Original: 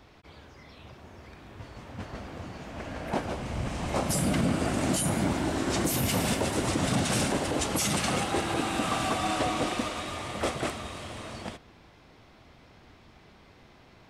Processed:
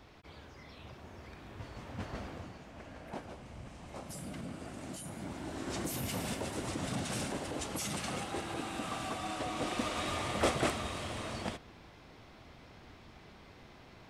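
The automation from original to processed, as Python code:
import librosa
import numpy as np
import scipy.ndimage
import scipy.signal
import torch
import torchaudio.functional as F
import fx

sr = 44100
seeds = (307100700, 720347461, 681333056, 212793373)

y = fx.gain(x, sr, db=fx.line((2.24, -2.0), (2.63, -10.0), (3.82, -17.0), (5.12, -17.0), (5.71, -10.0), (9.44, -10.0), (10.07, 0.0)))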